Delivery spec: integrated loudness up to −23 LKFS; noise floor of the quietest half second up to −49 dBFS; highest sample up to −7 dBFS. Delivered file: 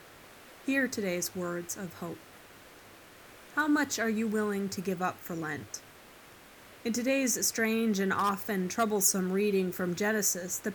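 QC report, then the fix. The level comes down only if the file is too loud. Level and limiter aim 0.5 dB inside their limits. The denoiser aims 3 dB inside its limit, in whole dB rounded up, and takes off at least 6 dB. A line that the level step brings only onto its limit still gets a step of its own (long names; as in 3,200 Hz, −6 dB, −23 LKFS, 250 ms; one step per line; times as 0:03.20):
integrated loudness −30.0 LKFS: in spec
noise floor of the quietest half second −53 dBFS: in spec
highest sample −12.0 dBFS: in spec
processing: no processing needed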